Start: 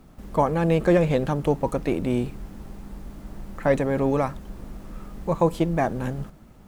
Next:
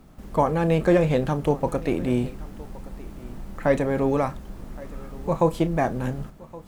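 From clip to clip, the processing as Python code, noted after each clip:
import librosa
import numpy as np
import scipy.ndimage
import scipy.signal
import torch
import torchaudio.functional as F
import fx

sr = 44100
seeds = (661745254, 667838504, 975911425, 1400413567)

y = fx.doubler(x, sr, ms=32.0, db=-13)
y = y + 10.0 ** (-20.5 / 20.0) * np.pad(y, (int(1119 * sr / 1000.0), 0))[:len(y)]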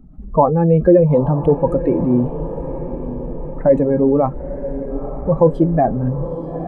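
y = fx.spec_expand(x, sr, power=2.0)
y = fx.echo_diffused(y, sr, ms=919, feedback_pct=58, wet_db=-12.0)
y = y * 10.0 ** (8.0 / 20.0)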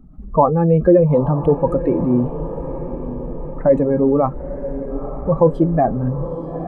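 y = fx.peak_eq(x, sr, hz=1200.0, db=6.0, octaves=0.33)
y = y * 10.0 ** (-1.0 / 20.0)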